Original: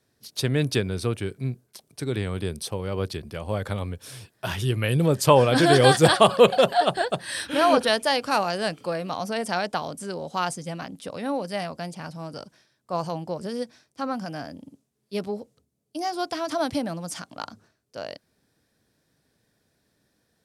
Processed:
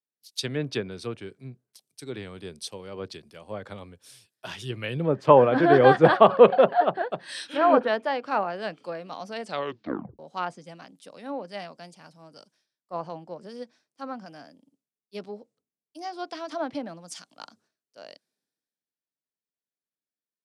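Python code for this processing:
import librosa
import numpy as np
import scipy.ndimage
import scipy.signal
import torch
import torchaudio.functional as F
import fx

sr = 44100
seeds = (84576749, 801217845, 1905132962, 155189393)

y = fx.edit(x, sr, fx.tape_stop(start_s=9.43, length_s=0.76), tone=tone)
y = scipy.signal.sosfilt(scipy.signal.butter(2, 190.0, 'highpass', fs=sr, output='sos'), y)
y = fx.env_lowpass_down(y, sr, base_hz=1900.0, full_db=-20.0)
y = fx.band_widen(y, sr, depth_pct=70)
y = F.gain(torch.from_numpy(y), -4.5).numpy()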